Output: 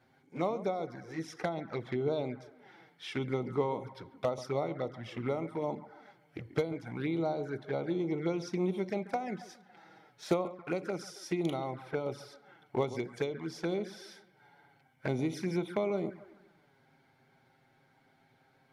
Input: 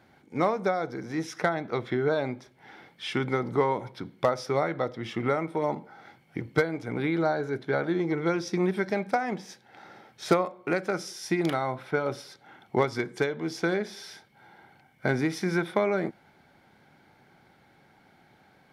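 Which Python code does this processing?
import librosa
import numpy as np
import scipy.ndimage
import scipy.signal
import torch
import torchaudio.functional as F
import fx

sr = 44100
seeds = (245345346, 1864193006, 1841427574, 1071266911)

y = fx.echo_wet_lowpass(x, sr, ms=138, feedback_pct=43, hz=2100.0, wet_db=-14.0)
y = fx.env_flanger(y, sr, rest_ms=8.2, full_db=-23.5)
y = F.gain(torch.from_numpy(y), -5.0).numpy()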